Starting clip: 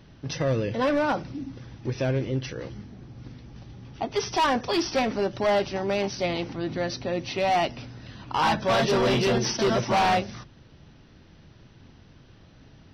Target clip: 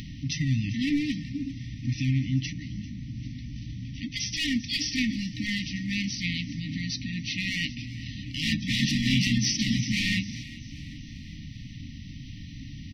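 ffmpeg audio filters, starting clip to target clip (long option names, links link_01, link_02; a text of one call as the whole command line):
ffmpeg -i in.wav -filter_complex "[0:a]acompressor=mode=upward:threshold=-32dB:ratio=2.5,asplit=5[link_01][link_02][link_03][link_04][link_05];[link_02]adelay=394,afreqshift=43,volume=-18dB[link_06];[link_03]adelay=788,afreqshift=86,volume=-23.7dB[link_07];[link_04]adelay=1182,afreqshift=129,volume=-29.4dB[link_08];[link_05]adelay=1576,afreqshift=172,volume=-35dB[link_09];[link_01][link_06][link_07][link_08][link_09]amix=inputs=5:normalize=0,afftfilt=real='re*(1-between(b*sr/4096,310,1800))':imag='im*(1-between(b*sr/4096,310,1800))':win_size=4096:overlap=0.75,volume=2.5dB" out.wav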